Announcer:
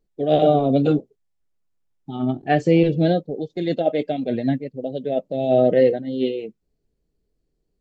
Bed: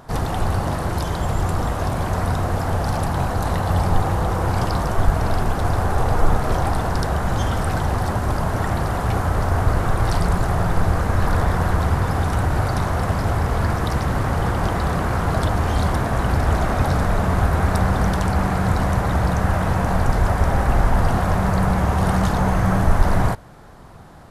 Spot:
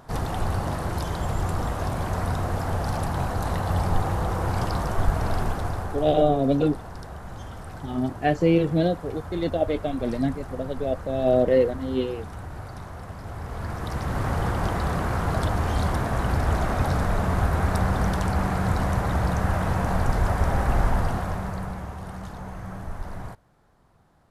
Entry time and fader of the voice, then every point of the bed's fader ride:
5.75 s, -3.5 dB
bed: 5.46 s -5 dB
6.29 s -17 dB
13.18 s -17 dB
14.27 s -4.5 dB
20.88 s -4.5 dB
22.04 s -18 dB

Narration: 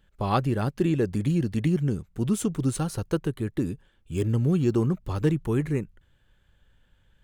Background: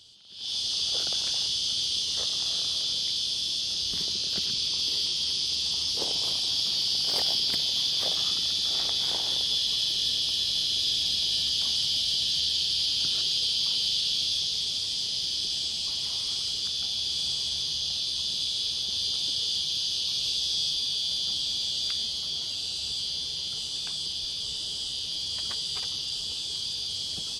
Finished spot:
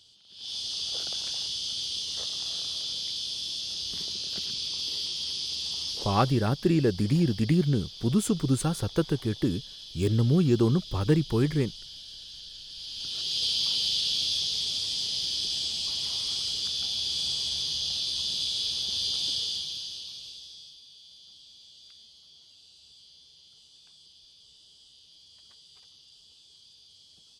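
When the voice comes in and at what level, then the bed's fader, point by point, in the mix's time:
5.85 s, +0.5 dB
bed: 5.91 s -4.5 dB
6.53 s -17.5 dB
12.65 s -17.5 dB
13.45 s -0.5 dB
19.34 s -0.5 dB
20.81 s -23 dB

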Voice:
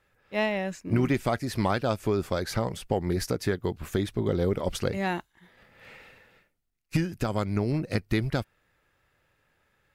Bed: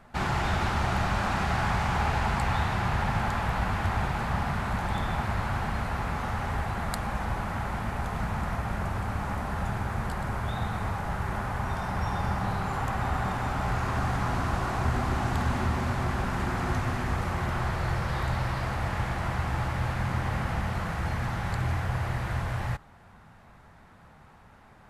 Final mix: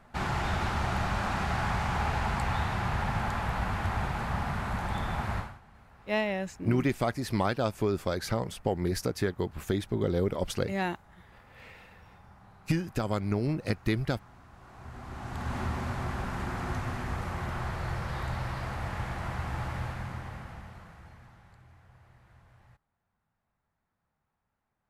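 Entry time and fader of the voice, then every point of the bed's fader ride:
5.75 s, -2.0 dB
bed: 5.38 s -3 dB
5.61 s -26 dB
14.50 s -26 dB
15.58 s -5 dB
19.77 s -5 dB
21.66 s -28.5 dB

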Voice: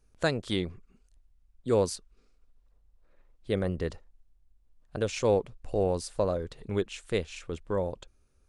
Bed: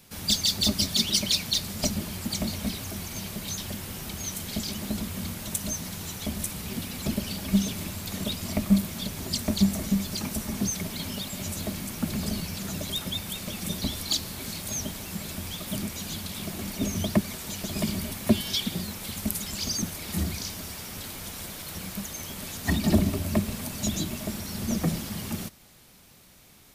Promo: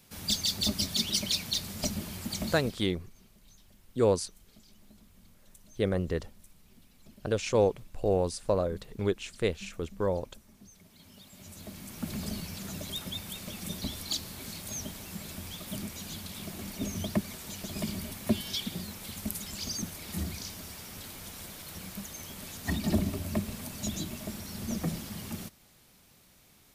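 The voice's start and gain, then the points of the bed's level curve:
2.30 s, +0.5 dB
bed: 2.53 s -5 dB
2.97 s -27 dB
10.68 s -27 dB
12.11 s -6 dB

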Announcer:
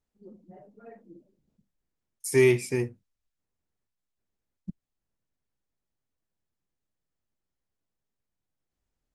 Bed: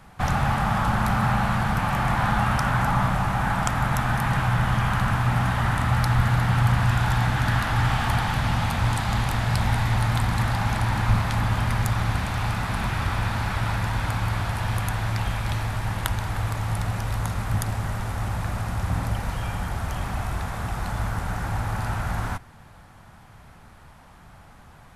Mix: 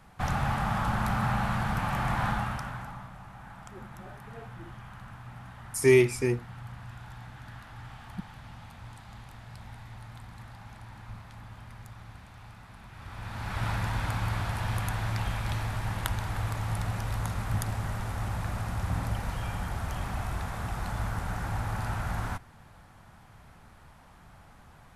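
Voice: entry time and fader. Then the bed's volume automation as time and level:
3.50 s, +0.5 dB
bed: 2.28 s -6 dB
3.08 s -23 dB
12.88 s -23 dB
13.64 s -5 dB

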